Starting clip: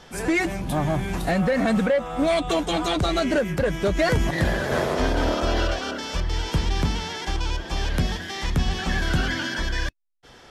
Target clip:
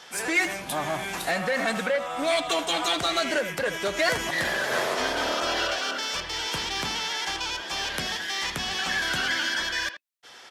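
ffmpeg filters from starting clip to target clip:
ffmpeg -i in.wav -filter_complex "[0:a]highpass=frequency=1400:poles=1,asplit=2[link_01][link_02];[link_02]asoftclip=type=hard:threshold=-33dB,volume=-9dB[link_03];[link_01][link_03]amix=inputs=2:normalize=0,asplit=2[link_04][link_05];[link_05]adelay=80,highpass=300,lowpass=3400,asoftclip=type=hard:threshold=-24dB,volume=-10dB[link_06];[link_04][link_06]amix=inputs=2:normalize=0,volume=2.5dB" out.wav

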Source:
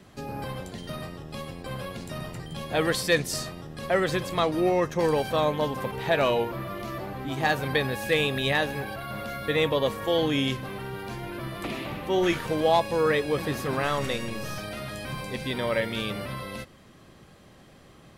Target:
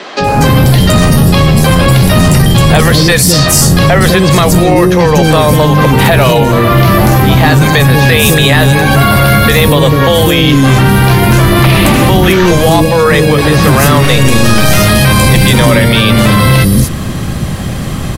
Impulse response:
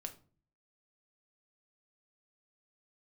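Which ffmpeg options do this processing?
-filter_complex "[0:a]acompressor=threshold=-34dB:ratio=5,bass=frequency=250:gain=10,treble=frequency=4000:gain=6,acrossover=split=400|5100[link_01][link_02][link_03];[link_01]adelay=200[link_04];[link_03]adelay=240[link_05];[link_04][link_02][link_05]amix=inputs=3:normalize=0,apsyclip=32.5dB,volume=-1.5dB"

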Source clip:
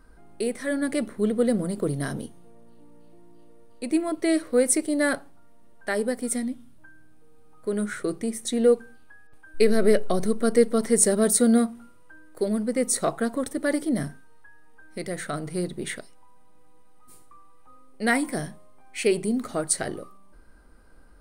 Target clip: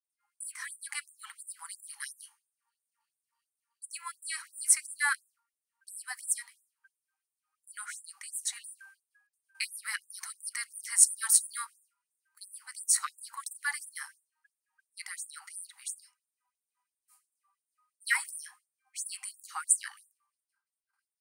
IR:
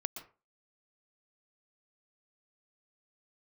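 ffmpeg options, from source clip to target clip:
-af "equalizer=frequency=3600:width=6.9:gain=-11.5,agate=range=-33dB:threshold=-38dB:ratio=3:detection=peak,afftfilt=real='re*gte(b*sr/1024,760*pow(7300/760,0.5+0.5*sin(2*PI*2.9*pts/sr)))':imag='im*gte(b*sr/1024,760*pow(7300/760,0.5+0.5*sin(2*PI*2.9*pts/sr)))':win_size=1024:overlap=0.75"

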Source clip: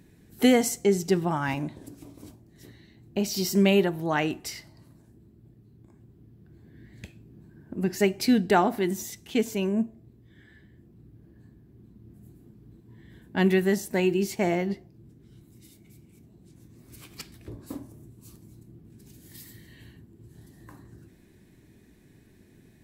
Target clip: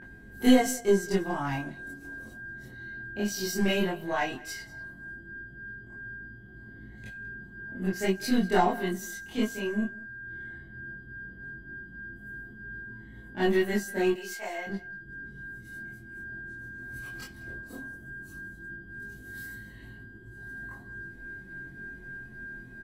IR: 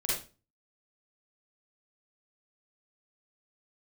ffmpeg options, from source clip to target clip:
-filter_complex "[0:a]asettb=1/sr,asplit=3[link_01][link_02][link_03];[link_01]atrim=end=14.104[link_04];[link_02]atrim=start=14.1:end=14.67,asetpts=PTS-STARTPTS,afade=type=in:duration=0.004:curve=qsin,afade=type=out:start_time=0.566:duration=0.004:curve=qsin,highpass=780[link_05];[link_03]atrim=start=14.666[link_06];[link_04][link_05]acrossfade=duration=0.004:curve1=hsin:curve2=qsin[link_07];[link_07][link_06]acrossfade=duration=0.004:curve1=qsin:curve2=hsin,acrossover=split=1900[link_08][link_09];[link_08]acompressor=mode=upward:threshold=-34dB:ratio=2.5[link_10];[link_10][link_09]amix=inputs=2:normalize=0,aeval=exprs='val(0)+0.0224*sin(2*PI*1600*n/s)':channel_layout=same,aeval=exprs='0.376*(cos(1*acos(clip(val(0)/0.376,-1,1)))-cos(1*PI/2))+0.0376*(cos(2*acos(clip(val(0)/0.376,-1,1)))-cos(2*PI/2))+0.0133*(cos(7*acos(clip(val(0)/0.376,-1,1)))-cos(7*PI/2))':channel_layout=same,aecho=1:1:189:0.0891,flanger=delay=19:depth=4.9:speed=0.15[link_11];[1:a]atrim=start_sample=2205,atrim=end_sample=3528,asetrate=83790,aresample=44100[link_12];[link_11][link_12]afir=irnorm=-1:irlink=0"

